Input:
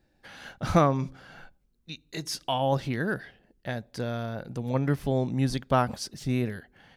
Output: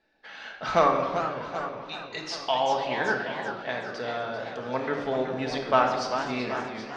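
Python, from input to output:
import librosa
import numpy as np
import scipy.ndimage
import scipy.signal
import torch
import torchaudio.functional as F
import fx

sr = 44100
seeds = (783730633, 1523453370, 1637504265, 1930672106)

p1 = fx.bass_treble(x, sr, bass_db=-14, treble_db=-6)
p2 = np.clip(10.0 ** (12.0 / 20.0) * p1, -1.0, 1.0) / 10.0 ** (12.0 / 20.0)
p3 = scipy.signal.sosfilt(scipy.signal.butter(4, 6000.0, 'lowpass', fs=sr, output='sos'), p2)
p4 = fx.low_shelf(p3, sr, hz=370.0, db=-8.0)
p5 = p4 + fx.echo_feedback(p4, sr, ms=777, feedback_pct=38, wet_db=-13.5, dry=0)
p6 = fx.room_shoebox(p5, sr, seeds[0], volume_m3=1300.0, walls='mixed', distance_m=1.5)
p7 = fx.echo_warbled(p6, sr, ms=385, feedback_pct=40, rate_hz=2.8, cents=217, wet_db=-9.0)
y = F.gain(torch.from_numpy(p7), 3.5).numpy()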